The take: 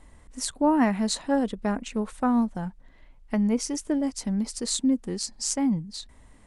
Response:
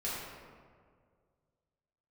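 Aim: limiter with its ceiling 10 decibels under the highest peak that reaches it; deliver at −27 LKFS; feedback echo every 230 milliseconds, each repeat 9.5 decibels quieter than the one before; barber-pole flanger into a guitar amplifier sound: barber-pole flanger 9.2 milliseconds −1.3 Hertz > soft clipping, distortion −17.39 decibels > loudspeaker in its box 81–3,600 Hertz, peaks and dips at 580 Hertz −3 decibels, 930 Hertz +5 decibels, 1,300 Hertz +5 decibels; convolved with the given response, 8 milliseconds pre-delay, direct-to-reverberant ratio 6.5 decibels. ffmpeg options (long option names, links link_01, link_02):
-filter_complex "[0:a]alimiter=limit=-19dB:level=0:latency=1,aecho=1:1:230|460|690|920:0.335|0.111|0.0365|0.012,asplit=2[link_01][link_02];[1:a]atrim=start_sample=2205,adelay=8[link_03];[link_02][link_03]afir=irnorm=-1:irlink=0,volume=-11dB[link_04];[link_01][link_04]amix=inputs=2:normalize=0,asplit=2[link_05][link_06];[link_06]adelay=9.2,afreqshift=-1.3[link_07];[link_05][link_07]amix=inputs=2:normalize=1,asoftclip=threshold=-21dB,highpass=81,equalizer=frequency=580:width_type=q:width=4:gain=-3,equalizer=frequency=930:width_type=q:width=4:gain=5,equalizer=frequency=1300:width_type=q:width=4:gain=5,lowpass=frequency=3600:width=0.5412,lowpass=frequency=3600:width=1.3066,volume=5.5dB"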